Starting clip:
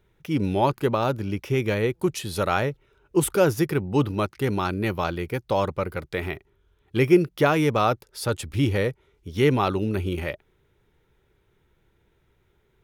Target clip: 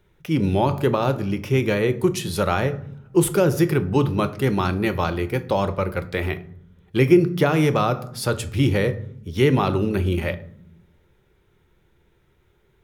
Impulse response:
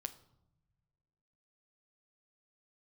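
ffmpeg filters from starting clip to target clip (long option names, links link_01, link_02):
-filter_complex "[1:a]atrim=start_sample=2205,asetrate=61740,aresample=44100[link_01];[0:a][link_01]afir=irnorm=-1:irlink=0,acrossover=split=360[link_02][link_03];[link_03]acompressor=threshold=-27dB:ratio=5[link_04];[link_02][link_04]amix=inputs=2:normalize=0,volume=9dB"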